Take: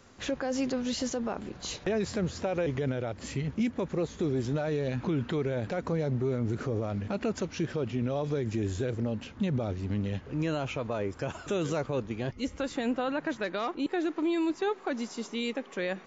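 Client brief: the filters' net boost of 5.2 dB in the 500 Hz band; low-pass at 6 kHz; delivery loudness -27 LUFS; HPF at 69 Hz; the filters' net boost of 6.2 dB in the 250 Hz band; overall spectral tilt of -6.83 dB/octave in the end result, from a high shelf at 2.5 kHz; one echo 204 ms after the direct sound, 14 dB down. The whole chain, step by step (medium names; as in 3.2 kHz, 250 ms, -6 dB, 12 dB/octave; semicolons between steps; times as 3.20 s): high-pass 69 Hz; low-pass 6 kHz; peaking EQ 250 Hz +6.5 dB; peaking EQ 500 Hz +4.5 dB; treble shelf 2.5 kHz -4.5 dB; delay 204 ms -14 dB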